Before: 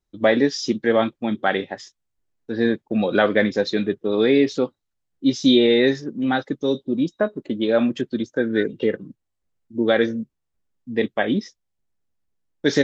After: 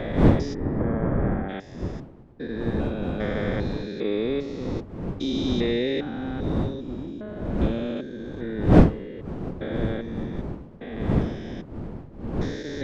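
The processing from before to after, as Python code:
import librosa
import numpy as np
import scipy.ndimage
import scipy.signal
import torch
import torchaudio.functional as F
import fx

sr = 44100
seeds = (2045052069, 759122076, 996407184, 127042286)

y = fx.spec_steps(x, sr, hold_ms=400)
y = fx.dmg_wind(y, sr, seeds[0], corner_hz=260.0, level_db=-21.0)
y = fx.lowpass(y, sr, hz=1800.0, slope=24, at=(0.53, 1.48), fade=0.02)
y = y * 10.0 ** (-5.5 / 20.0)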